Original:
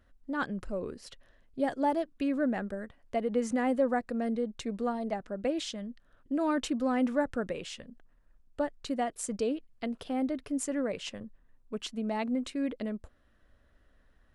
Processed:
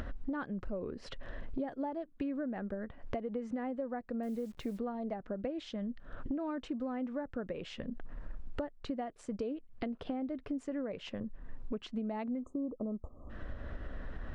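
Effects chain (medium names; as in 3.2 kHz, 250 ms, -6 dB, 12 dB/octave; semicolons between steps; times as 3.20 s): upward compressor, threshold -36 dBFS; 12.40–13.30 s: spectral selection erased 1.3–6.2 kHz; compression 10:1, threshold -44 dBFS, peak gain reduction 21.5 dB; tape spacing loss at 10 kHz 28 dB; 4.23–4.79 s: word length cut 12-bit, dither none; trim +10.5 dB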